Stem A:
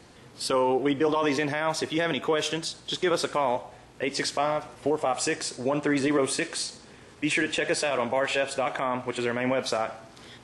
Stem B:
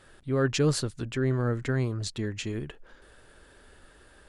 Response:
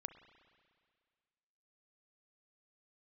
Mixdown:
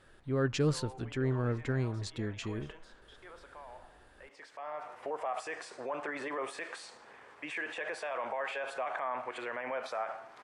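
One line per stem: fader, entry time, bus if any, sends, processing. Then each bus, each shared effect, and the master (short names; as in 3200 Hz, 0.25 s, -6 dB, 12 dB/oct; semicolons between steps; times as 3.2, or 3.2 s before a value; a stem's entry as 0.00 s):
+1.5 dB, 0.20 s, send -13 dB, low shelf 300 Hz -11.5 dB; limiter -26 dBFS, peak gain reduction 11 dB; three-band isolator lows -13 dB, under 510 Hz, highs -18 dB, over 2100 Hz; auto duck -21 dB, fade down 0.25 s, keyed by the second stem
-6.0 dB, 0.00 s, send -12 dB, high shelf 5700 Hz -7 dB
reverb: on, RT60 2.0 s, pre-delay 33 ms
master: dry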